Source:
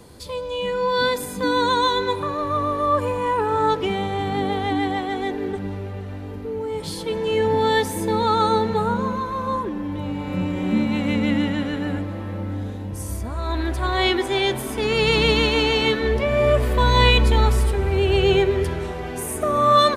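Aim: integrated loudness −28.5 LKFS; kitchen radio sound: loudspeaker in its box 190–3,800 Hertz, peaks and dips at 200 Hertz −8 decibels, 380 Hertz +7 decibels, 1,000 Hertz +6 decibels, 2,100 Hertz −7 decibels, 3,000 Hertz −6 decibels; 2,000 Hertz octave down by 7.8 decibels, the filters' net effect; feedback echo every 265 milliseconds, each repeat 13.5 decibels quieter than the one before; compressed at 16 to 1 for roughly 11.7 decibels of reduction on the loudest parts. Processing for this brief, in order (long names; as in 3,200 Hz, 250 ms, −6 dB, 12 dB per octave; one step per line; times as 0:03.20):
parametric band 2,000 Hz −6.5 dB
downward compressor 16 to 1, threshold −24 dBFS
loudspeaker in its box 190–3,800 Hz, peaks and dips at 200 Hz −8 dB, 380 Hz +7 dB, 1,000 Hz +6 dB, 2,100 Hz −7 dB, 3,000 Hz −6 dB
repeating echo 265 ms, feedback 21%, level −13.5 dB
level −1.5 dB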